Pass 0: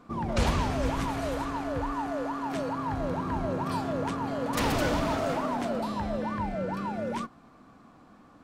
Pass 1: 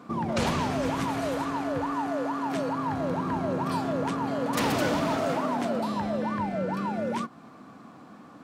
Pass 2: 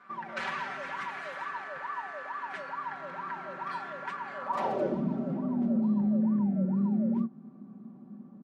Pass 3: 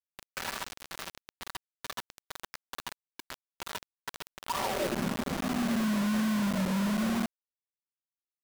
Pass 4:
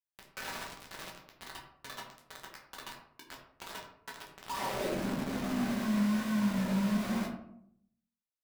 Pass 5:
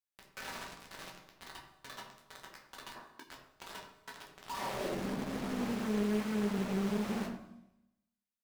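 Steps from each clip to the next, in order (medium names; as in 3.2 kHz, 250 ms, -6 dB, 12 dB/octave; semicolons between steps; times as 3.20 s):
Chebyshev high-pass 150 Hz, order 2; in parallel at +2 dB: compression, threshold -39 dBFS, peak gain reduction 14 dB
comb 5.2 ms, depth 97%; band-pass sweep 1.7 kHz -> 230 Hz, 4.34–5.06 s; bass shelf 85 Hz +11 dB
bit crusher 5-bit; trim -2.5 dB
reverberation RT60 0.70 s, pre-delay 8 ms, DRR -2 dB; trim -7.5 dB
Schroeder reverb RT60 0.95 s, combs from 30 ms, DRR 12.5 dB; time-frequency box 2.95–3.23 s, 210–1900 Hz +7 dB; loudspeaker Doppler distortion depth 0.87 ms; trim -3 dB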